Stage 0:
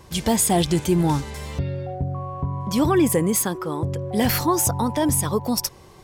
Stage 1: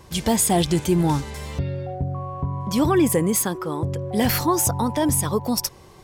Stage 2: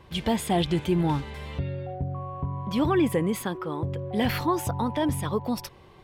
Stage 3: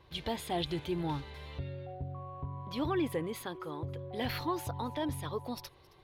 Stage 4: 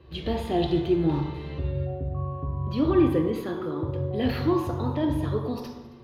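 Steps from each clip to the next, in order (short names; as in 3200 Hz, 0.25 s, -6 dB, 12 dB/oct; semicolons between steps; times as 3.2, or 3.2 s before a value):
nothing audible
resonant high shelf 4500 Hz -10.5 dB, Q 1.5; gain -4.5 dB
thirty-one-band EQ 200 Hz -12 dB, 4000 Hz +7 dB, 8000 Hz -7 dB; thin delay 0.269 s, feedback 32%, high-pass 1600 Hz, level -22 dB; gain -8.5 dB
reverb RT60 1.1 s, pre-delay 3 ms, DRR 1.5 dB; gain -3 dB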